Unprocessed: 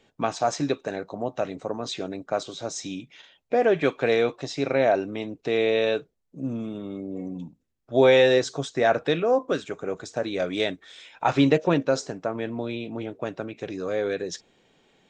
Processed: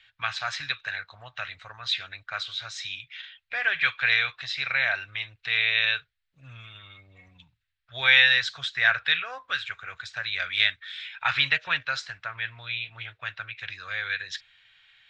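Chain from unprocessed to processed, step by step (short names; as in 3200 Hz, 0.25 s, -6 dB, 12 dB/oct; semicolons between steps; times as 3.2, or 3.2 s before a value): EQ curve 110 Hz 0 dB, 220 Hz -30 dB, 380 Hz -28 dB, 1000 Hz -3 dB, 1600 Hz +14 dB, 4000 Hz +12 dB, 6300 Hz -5 dB; gain -4 dB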